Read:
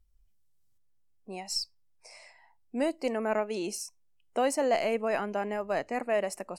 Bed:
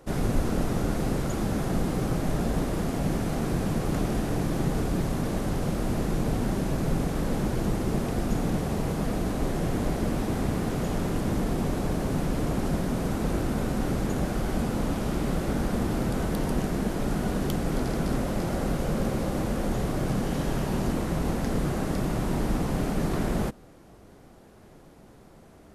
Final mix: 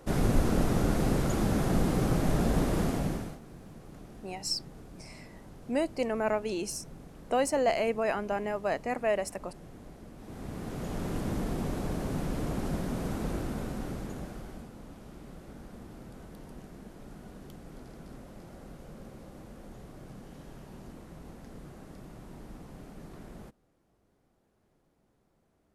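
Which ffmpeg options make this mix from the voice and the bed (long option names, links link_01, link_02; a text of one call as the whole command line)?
ffmpeg -i stem1.wav -i stem2.wav -filter_complex "[0:a]adelay=2950,volume=0dB[link_01];[1:a]volume=16dB,afade=type=out:start_time=2.83:duration=0.56:silence=0.0841395,afade=type=in:start_time=10.17:duration=0.98:silence=0.158489,afade=type=out:start_time=13.17:duration=1.54:silence=0.188365[link_02];[link_01][link_02]amix=inputs=2:normalize=0" out.wav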